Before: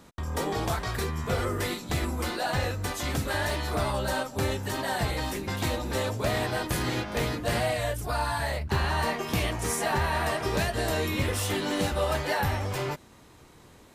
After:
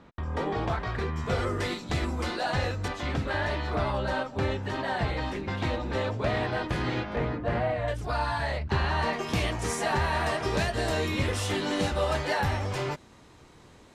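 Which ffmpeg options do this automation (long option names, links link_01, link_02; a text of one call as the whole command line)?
ffmpeg -i in.wav -af "asetnsamples=nb_out_samples=441:pad=0,asendcmd='1.16 lowpass f 5900;2.88 lowpass f 3300;7.16 lowpass f 1700;7.88 lowpass f 4600;9.13 lowpass f 7600',lowpass=2800" out.wav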